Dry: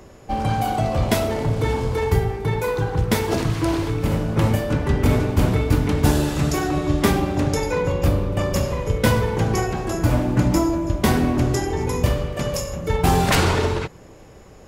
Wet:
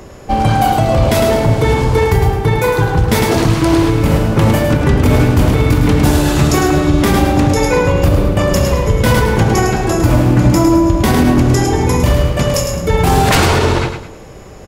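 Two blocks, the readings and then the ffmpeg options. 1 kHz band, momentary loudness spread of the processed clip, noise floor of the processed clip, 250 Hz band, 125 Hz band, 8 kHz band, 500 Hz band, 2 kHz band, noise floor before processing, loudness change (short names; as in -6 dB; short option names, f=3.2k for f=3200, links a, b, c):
+9.0 dB, 3 LU, -33 dBFS, +9.0 dB, +8.5 dB, +8.5 dB, +8.5 dB, +9.0 dB, -44 dBFS, +8.5 dB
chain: -af "aecho=1:1:106|212|318|424:0.447|0.147|0.0486|0.0161,alimiter=level_in=10.5dB:limit=-1dB:release=50:level=0:latency=1,volume=-1dB"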